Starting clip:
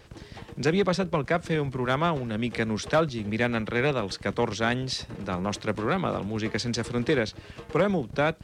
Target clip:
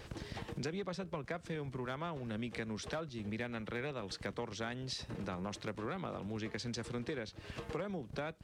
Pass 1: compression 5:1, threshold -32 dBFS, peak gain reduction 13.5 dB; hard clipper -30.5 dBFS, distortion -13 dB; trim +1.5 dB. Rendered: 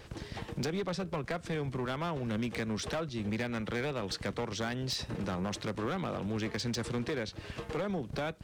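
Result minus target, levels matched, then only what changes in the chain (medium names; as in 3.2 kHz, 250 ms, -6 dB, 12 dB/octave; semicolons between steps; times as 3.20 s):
compression: peak gain reduction -7 dB
change: compression 5:1, threshold -41 dBFS, peak gain reduction 20.5 dB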